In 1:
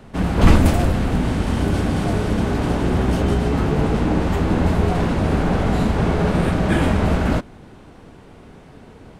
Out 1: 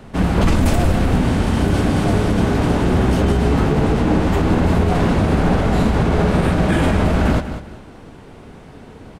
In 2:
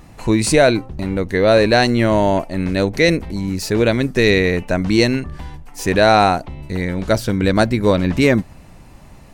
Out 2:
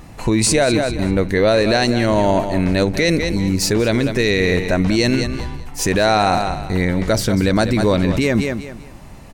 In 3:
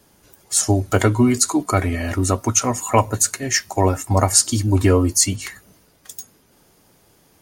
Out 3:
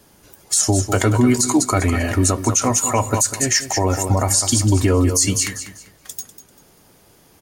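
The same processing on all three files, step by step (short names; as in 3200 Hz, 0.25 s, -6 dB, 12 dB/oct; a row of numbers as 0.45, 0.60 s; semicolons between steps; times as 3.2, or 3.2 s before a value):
dynamic EQ 6700 Hz, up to +5 dB, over -33 dBFS, Q 0.8; on a send: feedback echo 0.196 s, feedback 28%, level -12.5 dB; on the sum: maximiser +9 dB; gain -5.5 dB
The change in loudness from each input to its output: +2.5, -0.5, +1.0 LU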